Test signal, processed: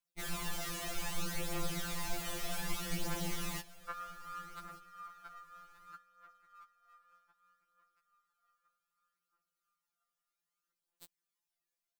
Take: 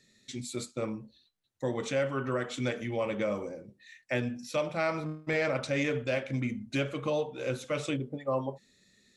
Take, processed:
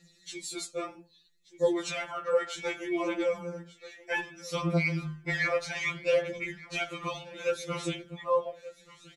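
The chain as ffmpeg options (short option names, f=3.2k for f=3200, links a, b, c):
-af "aecho=1:1:1181|2362:0.112|0.0281,aphaser=in_gain=1:out_gain=1:delay=1.8:decay=0.51:speed=0.64:type=triangular,afftfilt=real='re*2.83*eq(mod(b,8),0)':imag='im*2.83*eq(mod(b,8),0)':win_size=2048:overlap=0.75,volume=4dB"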